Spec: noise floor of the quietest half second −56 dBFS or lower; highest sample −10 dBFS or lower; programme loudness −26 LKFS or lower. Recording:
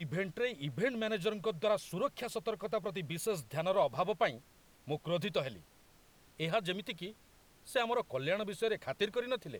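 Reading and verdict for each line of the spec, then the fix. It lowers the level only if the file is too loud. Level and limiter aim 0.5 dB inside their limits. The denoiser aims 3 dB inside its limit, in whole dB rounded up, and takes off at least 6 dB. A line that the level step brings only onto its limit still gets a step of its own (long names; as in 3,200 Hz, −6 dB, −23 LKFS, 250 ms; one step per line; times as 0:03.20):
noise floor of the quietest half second −64 dBFS: in spec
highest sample −17.5 dBFS: in spec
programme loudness −36.0 LKFS: in spec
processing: no processing needed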